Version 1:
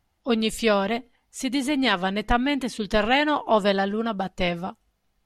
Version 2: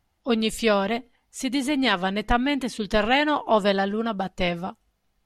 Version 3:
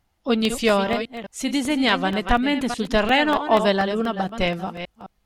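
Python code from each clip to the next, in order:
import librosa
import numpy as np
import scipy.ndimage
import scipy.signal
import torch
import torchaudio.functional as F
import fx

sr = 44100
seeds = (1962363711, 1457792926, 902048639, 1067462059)

y1 = x
y2 = fx.reverse_delay(y1, sr, ms=211, wet_db=-9.5)
y2 = fx.buffer_crackle(y2, sr, first_s=0.45, period_s=0.24, block=64, kind='repeat')
y2 = F.gain(torch.from_numpy(y2), 2.0).numpy()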